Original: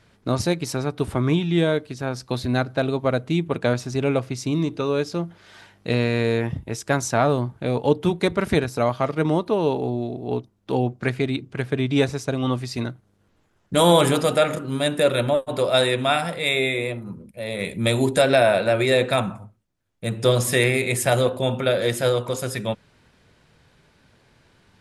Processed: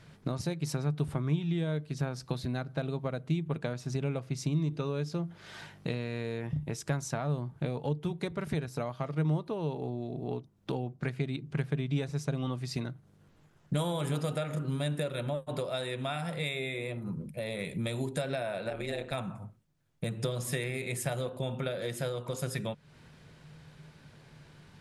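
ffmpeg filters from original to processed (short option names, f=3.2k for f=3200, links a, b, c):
-filter_complex "[0:a]asettb=1/sr,asplit=3[a][b][c];[a]atrim=end=18.704[d];[b]atrim=start=18.7:end=19.14,asetpts=PTS-STARTPTS,afade=t=in:d=0.004:c=qsin,afade=t=out:st=0.436:d=0.004:c=qsin,tremolo=f=150:d=0.857[e];[c]atrim=start=19.136[f];[d][e]acrossfade=d=0.004:c1=hsin:c2=qsin[g];[g][f]acrossfade=d=0.004:c1=qsin:c2=hsin,acompressor=threshold=-34dB:ratio=5,equalizer=f=150:t=o:w=0.24:g=15"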